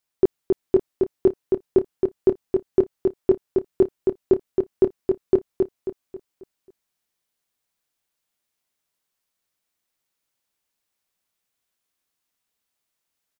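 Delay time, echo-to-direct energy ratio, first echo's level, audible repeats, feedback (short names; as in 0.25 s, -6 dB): 0.27 s, -3.0 dB, -4.0 dB, 4, 40%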